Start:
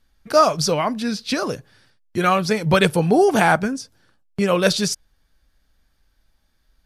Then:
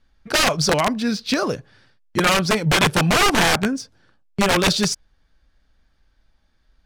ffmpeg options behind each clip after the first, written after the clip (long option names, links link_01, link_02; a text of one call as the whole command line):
ffmpeg -i in.wav -filter_complex "[0:a]acrossover=split=1600[link_01][link_02];[link_01]aeval=exprs='(mod(4.47*val(0)+1,2)-1)/4.47':channel_layout=same[link_03];[link_03][link_02]amix=inputs=2:normalize=0,adynamicsmooth=sensitivity=7.5:basefreq=6200,volume=2dB" out.wav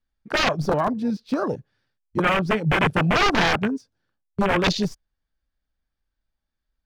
ffmpeg -i in.wav -filter_complex "[0:a]acrossover=split=570|3800[link_01][link_02][link_03];[link_03]aeval=exprs='clip(val(0),-1,0.0316)':channel_layout=same[link_04];[link_01][link_02][link_04]amix=inputs=3:normalize=0,afwtdn=0.0708,volume=-2dB" out.wav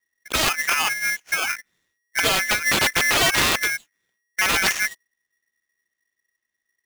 ffmpeg -i in.wav -af "aeval=exprs='val(0)*sgn(sin(2*PI*1900*n/s))':channel_layout=same" out.wav